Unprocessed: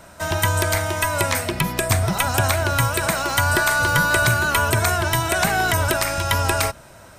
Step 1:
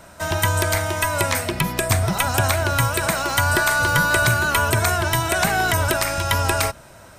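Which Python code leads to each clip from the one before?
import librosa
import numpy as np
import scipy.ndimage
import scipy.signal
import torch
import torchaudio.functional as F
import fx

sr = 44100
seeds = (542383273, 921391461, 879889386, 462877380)

y = x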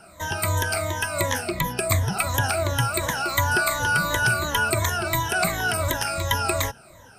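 y = fx.spec_ripple(x, sr, per_octave=1.1, drift_hz=-2.8, depth_db=17)
y = y * 10.0 ** (-7.0 / 20.0)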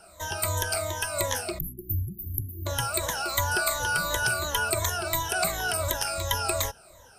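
y = fx.spec_erase(x, sr, start_s=1.59, length_s=1.07, low_hz=370.0, high_hz=11000.0)
y = fx.graphic_eq(y, sr, hz=(125, 250, 1000, 2000), db=(-9, -10, -3, -7))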